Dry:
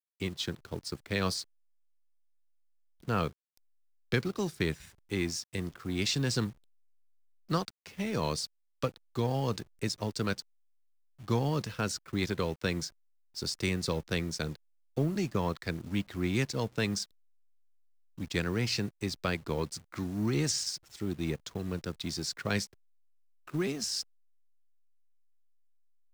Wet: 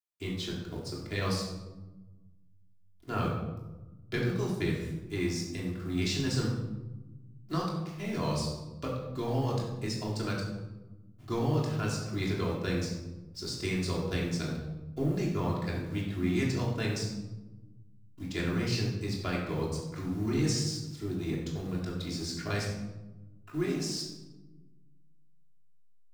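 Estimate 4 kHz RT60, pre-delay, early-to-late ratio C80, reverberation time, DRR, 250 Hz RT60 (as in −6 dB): 0.65 s, 3 ms, 5.0 dB, 1.1 s, −4.5 dB, 1.8 s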